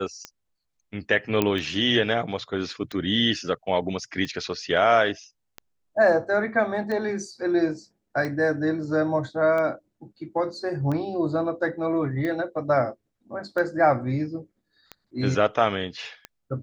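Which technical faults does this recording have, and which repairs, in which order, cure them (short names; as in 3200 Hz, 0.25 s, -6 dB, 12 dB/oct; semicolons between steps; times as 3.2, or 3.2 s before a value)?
tick 45 rpm -19 dBFS
1.42 pop -8 dBFS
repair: de-click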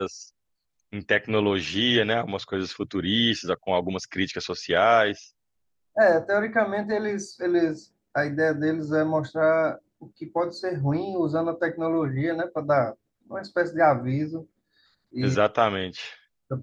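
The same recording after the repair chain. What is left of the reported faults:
none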